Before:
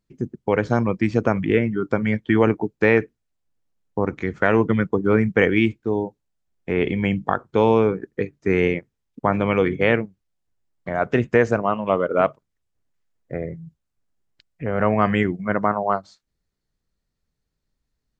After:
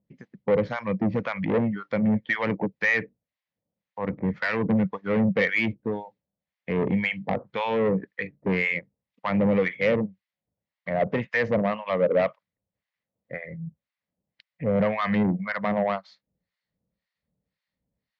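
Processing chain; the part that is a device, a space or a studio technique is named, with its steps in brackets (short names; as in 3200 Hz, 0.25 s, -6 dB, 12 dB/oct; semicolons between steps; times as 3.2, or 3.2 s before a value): guitar amplifier with harmonic tremolo (harmonic tremolo 1.9 Hz, depth 100%, crossover 910 Hz; soft clip -21.5 dBFS, distortion -8 dB; speaker cabinet 87–4400 Hz, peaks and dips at 190 Hz +7 dB, 370 Hz -8 dB, 540 Hz +8 dB, 1400 Hz -5 dB, 2000 Hz +7 dB); gain +2.5 dB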